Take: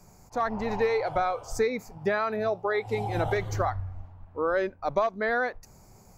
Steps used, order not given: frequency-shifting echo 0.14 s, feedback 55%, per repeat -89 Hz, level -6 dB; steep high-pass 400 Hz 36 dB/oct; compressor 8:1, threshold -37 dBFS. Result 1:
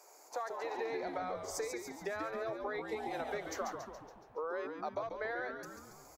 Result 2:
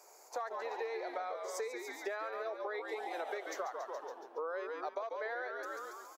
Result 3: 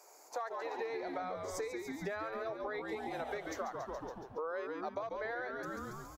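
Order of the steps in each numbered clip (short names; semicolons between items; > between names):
steep high-pass > compressor > frequency-shifting echo; frequency-shifting echo > steep high-pass > compressor; steep high-pass > frequency-shifting echo > compressor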